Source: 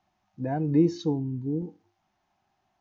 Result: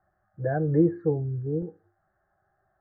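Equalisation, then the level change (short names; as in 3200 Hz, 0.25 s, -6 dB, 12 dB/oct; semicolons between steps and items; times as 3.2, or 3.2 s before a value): elliptic low-pass 1700 Hz, stop band 40 dB; notch 710 Hz, Q 12; fixed phaser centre 940 Hz, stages 6; +8.0 dB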